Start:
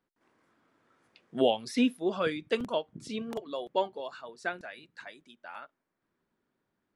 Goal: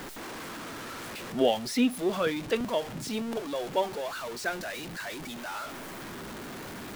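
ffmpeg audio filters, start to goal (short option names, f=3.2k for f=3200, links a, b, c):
-af "aeval=exprs='val(0)+0.5*0.02*sgn(val(0))':c=same"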